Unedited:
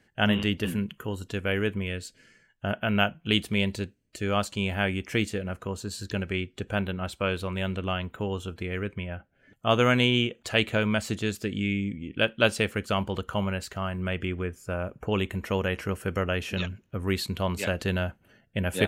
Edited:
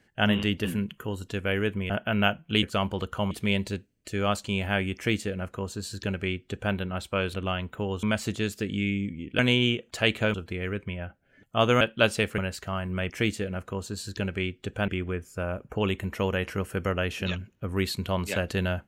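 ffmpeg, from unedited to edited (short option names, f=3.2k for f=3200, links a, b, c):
-filter_complex "[0:a]asplit=12[a][b][c][d][e][f][g][h][i][j][k][l];[a]atrim=end=1.902[m];[b]atrim=start=2.658:end=3.392[n];[c]atrim=start=12.788:end=13.472[o];[d]atrim=start=3.388:end=7.422[p];[e]atrim=start=7.748:end=8.442[q];[f]atrim=start=10.858:end=12.222[r];[g]atrim=start=9.908:end=10.862[s];[h]atrim=start=8.438:end=9.912[t];[i]atrim=start=12.218:end=12.792[u];[j]atrim=start=13.468:end=14.192[v];[k]atrim=start=5.038:end=6.822[w];[l]atrim=start=14.188[x];[m][n]acrossfade=d=0.004:c1=hsin:c2=hsin[y];[y][o]acrossfade=d=0.004:c1=hsin:c2=hsin[z];[z][p]acrossfade=d=0.004:c1=hsin:c2=hsin[aa];[aa][q]acrossfade=d=0.004:c1=hsin:c2=hsin[ab];[ab][r]acrossfade=d=0.004:c1=hsin:c2=hsin[ac];[ac][s]acrossfade=d=0.004:c1=hsin:c2=hsin[ad];[ad][t]acrossfade=d=0.004:c1=hsin:c2=hsin[ae];[ae][u]acrossfade=d=0.004:c1=hsin:c2=hsin[af];[af][v]acrossfade=d=0.004:c1=hsin:c2=hsin[ag];[ag][w]acrossfade=d=0.004:c1=hsin:c2=hsin[ah];[ah][x]acrossfade=d=0.004:c1=hsin:c2=hsin"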